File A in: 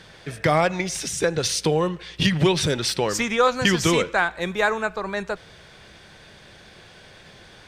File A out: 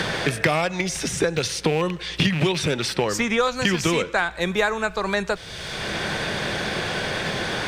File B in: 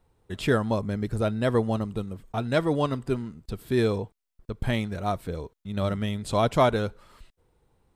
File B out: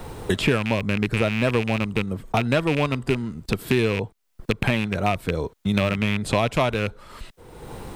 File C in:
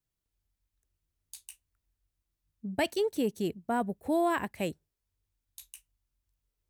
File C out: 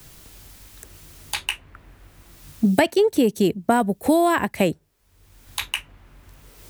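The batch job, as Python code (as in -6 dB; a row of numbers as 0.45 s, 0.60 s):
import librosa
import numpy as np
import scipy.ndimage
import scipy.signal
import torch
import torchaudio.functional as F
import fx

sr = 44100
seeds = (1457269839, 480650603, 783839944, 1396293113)

y = fx.rattle_buzz(x, sr, strikes_db=-26.0, level_db=-19.0)
y = fx.band_squash(y, sr, depth_pct=100)
y = y * 10.0 ** (-24 / 20.0) / np.sqrt(np.mean(np.square(y)))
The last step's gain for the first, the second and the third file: -1.0 dB, +2.5 dB, +11.5 dB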